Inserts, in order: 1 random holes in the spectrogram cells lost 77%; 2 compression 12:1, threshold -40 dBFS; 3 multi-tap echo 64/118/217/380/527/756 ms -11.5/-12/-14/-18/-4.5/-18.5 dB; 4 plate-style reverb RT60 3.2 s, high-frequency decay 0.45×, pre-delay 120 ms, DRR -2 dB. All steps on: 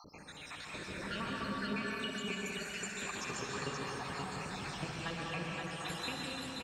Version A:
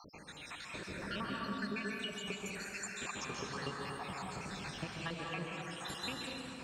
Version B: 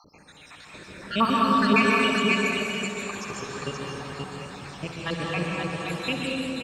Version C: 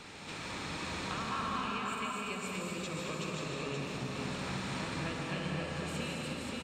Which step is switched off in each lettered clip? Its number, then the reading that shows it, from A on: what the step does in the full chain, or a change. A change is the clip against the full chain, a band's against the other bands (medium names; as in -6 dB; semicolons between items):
3, loudness change -2.0 LU; 2, mean gain reduction 6.0 dB; 1, 125 Hz band +3.0 dB